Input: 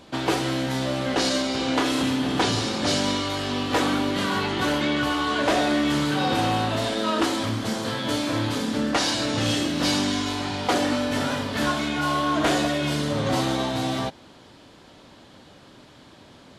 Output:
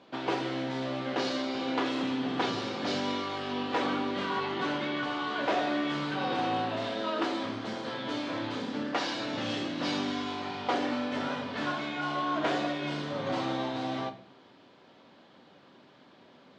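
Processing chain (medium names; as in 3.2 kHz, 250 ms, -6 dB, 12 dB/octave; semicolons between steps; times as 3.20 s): Bessel high-pass 230 Hz, order 2; distance through air 170 m; on a send: reverberation RT60 0.50 s, pre-delay 4 ms, DRR 7 dB; on the sum: trim -6 dB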